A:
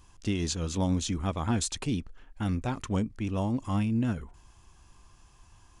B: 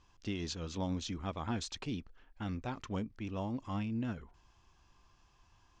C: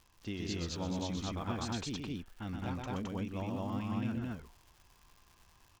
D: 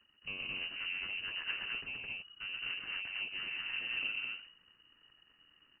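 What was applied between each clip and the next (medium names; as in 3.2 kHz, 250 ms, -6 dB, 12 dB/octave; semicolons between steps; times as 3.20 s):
low-pass 5.8 kHz 24 dB/octave; bass shelf 240 Hz -5 dB; trim -6 dB
crackle 110 per s -47 dBFS; loudspeakers at several distances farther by 43 m -4 dB, 74 m 0 dB; trim -2.5 dB
comb filter that takes the minimum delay 0.7 ms; frequency inversion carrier 2.9 kHz; trim -2 dB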